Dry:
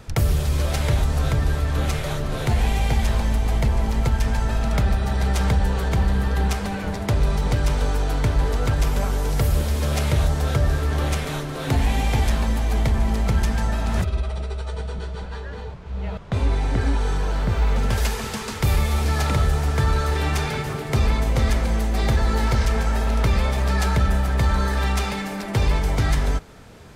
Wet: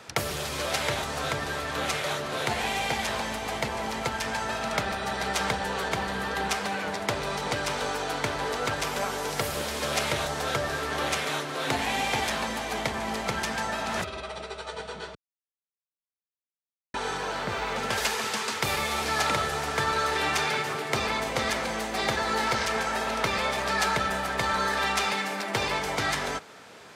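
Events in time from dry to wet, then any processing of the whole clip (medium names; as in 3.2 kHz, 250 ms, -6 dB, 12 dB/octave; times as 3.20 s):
15.15–16.94 s: mute
whole clip: frequency weighting A; trim +1.5 dB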